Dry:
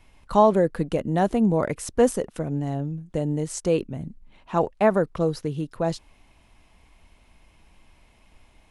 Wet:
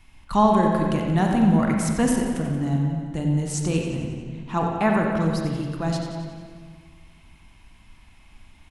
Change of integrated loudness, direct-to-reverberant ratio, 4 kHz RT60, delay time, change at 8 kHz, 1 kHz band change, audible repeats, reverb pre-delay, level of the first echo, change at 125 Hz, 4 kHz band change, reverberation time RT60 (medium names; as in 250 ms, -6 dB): +1.5 dB, 0.0 dB, 1.5 s, 90 ms, +3.0 dB, +2.0 dB, 2, 34 ms, -9.5 dB, +5.0 dB, +4.5 dB, 1.7 s